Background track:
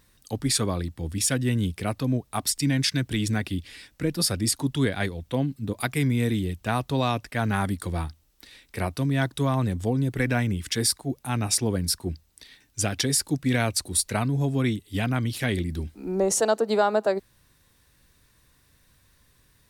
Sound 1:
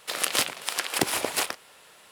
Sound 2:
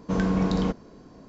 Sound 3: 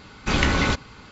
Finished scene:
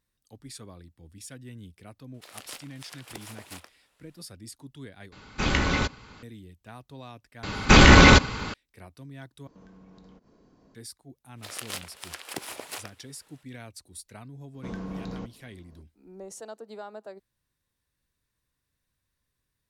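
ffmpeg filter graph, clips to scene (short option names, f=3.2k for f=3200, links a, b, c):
-filter_complex "[1:a]asplit=2[a][b];[3:a]asplit=2[c][d];[2:a]asplit=2[e][f];[0:a]volume=-19.5dB[g];[d]alimiter=level_in=14dB:limit=-1dB:release=50:level=0:latency=1[h];[e]acompressor=threshold=-39dB:ratio=6:attack=3.2:release=140:knee=1:detection=peak[i];[f]aresample=16000,aresample=44100[j];[g]asplit=3[k][l][m];[k]atrim=end=5.124[n];[c]atrim=end=1.11,asetpts=PTS-STARTPTS,volume=-4dB[o];[l]atrim=start=6.226:end=9.474[p];[i]atrim=end=1.28,asetpts=PTS-STARTPTS,volume=-11.5dB[q];[m]atrim=start=10.746[r];[a]atrim=end=2.11,asetpts=PTS-STARTPTS,volume=-18dB,afade=t=in:d=0.004:c=hsin,afade=t=out:st=2.106:d=0.004:c=hsin,adelay=2140[s];[h]atrim=end=1.11,asetpts=PTS-STARTPTS,volume=-2dB,afade=t=in:d=0.004:c=hsin,afade=t=out:st=1.106:d=0.004:c=hsin,adelay=7430[t];[b]atrim=end=2.11,asetpts=PTS-STARTPTS,volume=-11.5dB,afade=t=in:d=0.05,afade=t=out:st=2.06:d=0.05,adelay=11350[u];[j]atrim=end=1.28,asetpts=PTS-STARTPTS,volume=-12.5dB,afade=t=in:d=0.004:c=hsin,afade=t=out:st=1.276:d=0.004:c=hsin,adelay=14540[v];[n][o]acrossfade=d=0.004:c1=hsin:c2=hsin[w];[w][p]acrossfade=d=0.004:c1=hsin:c2=hsin[x];[x][q]acrossfade=d=0.004:c1=hsin:c2=hsin[y];[y][r]acrossfade=d=0.004:c1=hsin:c2=hsin[z];[z][s][t][u][v]amix=inputs=5:normalize=0"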